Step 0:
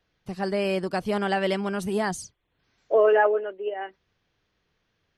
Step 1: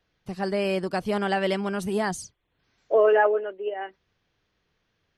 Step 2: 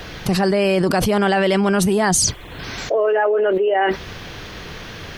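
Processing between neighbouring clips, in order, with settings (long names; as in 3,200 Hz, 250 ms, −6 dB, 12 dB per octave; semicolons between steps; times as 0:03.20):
no processing that can be heard
envelope flattener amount 100%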